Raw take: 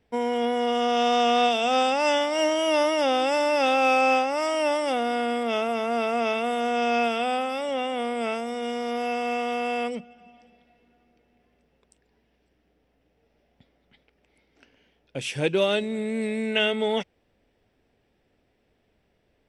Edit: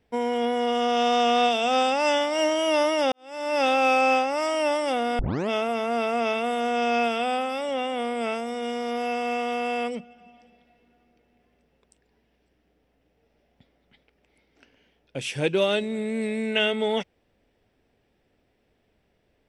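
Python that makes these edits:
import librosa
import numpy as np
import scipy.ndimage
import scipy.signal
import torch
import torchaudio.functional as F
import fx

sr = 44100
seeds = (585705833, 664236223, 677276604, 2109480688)

y = fx.edit(x, sr, fx.fade_in_span(start_s=3.12, length_s=0.47, curve='qua'),
    fx.tape_start(start_s=5.19, length_s=0.3), tone=tone)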